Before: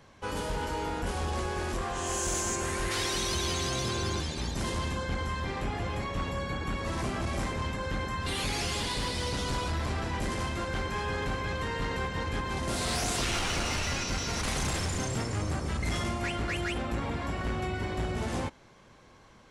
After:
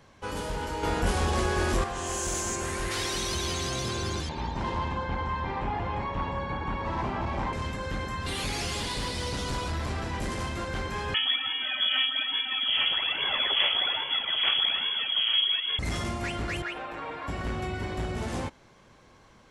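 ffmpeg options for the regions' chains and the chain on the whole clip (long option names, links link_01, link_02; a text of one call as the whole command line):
ffmpeg -i in.wav -filter_complex "[0:a]asettb=1/sr,asplit=3[link_01][link_02][link_03];[link_01]atrim=end=0.834[link_04];[link_02]atrim=start=0.83:end=1.84,asetpts=PTS-STARTPTS,afade=type=in:duration=0.004:curve=qsin,afade=type=out:start_time=1.006:duration=0.004:curve=qsin,acontrast=54,asplit=2[link_05][link_06];[link_06]adelay=21,volume=-11dB[link_07];[link_05][link_07]amix=inputs=2:normalize=0,atrim=end_sample=44541[link_08];[link_03]atrim=start=1.836[link_09];[link_04][link_08]acrossfade=duration=0.004:curve1=hsin:curve2=qsin[link_10];[link_10][link_09]acrossfade=duration=0.004:curve1=qsin:curve2=hsin,asettb=1/sr,asplit=3[link_11][link_12][link_13];[link_11]atrim=end=4.294[link_14];[link_12]atrim=start=4.29:end=7.53,asetpts=PTS-STARTPTS,afade=type=in:duration=0.004:curve=qsin,afade=type=out:start_time=3.236:duration=0.004:curve=qsin,lowpass=3100,equalizer=frequency=910:width=4.5:gain=13.5[link_15];[link_13]atrim=start=7.526[link_16];[link_14][link_15]acrossfade=duration=0.004:curve1=hsin:curve2=qsin[link_17];[link_17][link_16]acrossfade=duration=0.004:curve1=qsin:curve2=hsin,asettb=1/sr,asplit=3[link_18][link_19][link_20];[link_18]atrim=end=11.144[link_21];[link_19]atrim=start=11.14:end=15.79,asetpts=PTS-STARTPTS,afade=type=in:duration=0.004:curve=qsin,afade=type=out:start_time=4.646:duration=0.004:curve=qsin,aphaser=in_gain=1:out_gain=1:delay=1.7:decay=0.58:speed=1.2:type=sinusoidal,lowpass=frequency=2900:width_type=q:width=0.5098,lowpass=frequency=2900:width_type=q:width=0.6013,lowpass=frequency=2900:width_type=q:width=0.9,lowpass=frequency=2900:width_type=q:width=2.563,afreqshift=-3400[link_22];[link_20]atrim=start=15.786[link_23];[link_21][link_22]acrossfade=duration=0.004:curve1=hsin:curve2=qsin[link_24];[link_24][link_23]acrossfade=duration=0.004:curve1=qsin:curve2=hsin,asettb=1/sr,asplit=3[link_25][link_26][link_27];[link_25]atrim=end=16.624[link_28];[link_26]atrim=start=16.62:end=17.28,asetpts=PTS-STARTPTS,afade=type=in:duration=0.004:curve=qsin,afade=type=out:start_time=0.656:duration=0.004:curve=qsin,acrossover=split=390 3400:gain=0.126 1 0.178[link_29][link_30][link_31];[link_29][link_30][link_31]amix=inputs=3:normalize=0,aecho=1:1:6.5:0.52,atrim=end_sample=29106[link_32];[link_27]atrim=start=17.276[link_33];[link_28][link_32]acrossfade=duration=0.004:curve1=hsin:curve2=qsin[link_34];[link_34][link_33]acrossfade=duration=0.004:curve1=qsin:curve2=hsin" out.wav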